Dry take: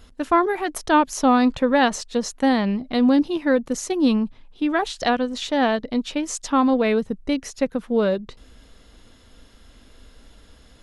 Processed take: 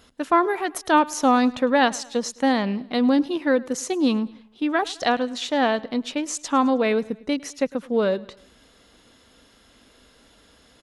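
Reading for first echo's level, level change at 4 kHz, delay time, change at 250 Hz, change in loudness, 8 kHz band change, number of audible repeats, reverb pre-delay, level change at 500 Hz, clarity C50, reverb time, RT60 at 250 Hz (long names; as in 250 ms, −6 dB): −22.0 dB, 0.0 dB, 105 ms, −2.5 dB, −1.0 dB, 0.0 dB, 3, no reverb audible, −1.0 dB, no reverb audible, no reverb audible, no reverb audible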